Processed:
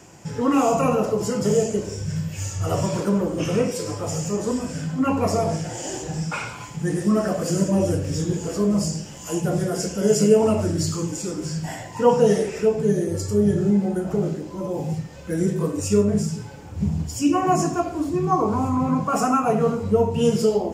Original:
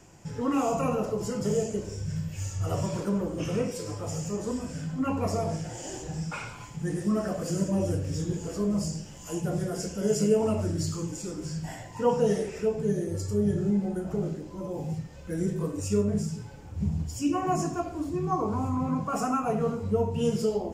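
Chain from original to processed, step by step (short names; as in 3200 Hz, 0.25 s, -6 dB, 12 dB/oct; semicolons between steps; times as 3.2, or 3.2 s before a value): HPF 120 Hz 6 dB/oct; gain +8 dB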